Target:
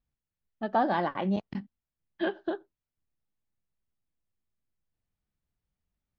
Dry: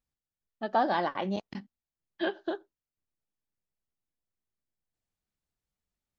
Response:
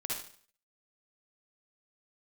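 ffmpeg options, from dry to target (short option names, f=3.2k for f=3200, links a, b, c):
-af "bass=f=250:g=7,treble=f=4k:g=-10"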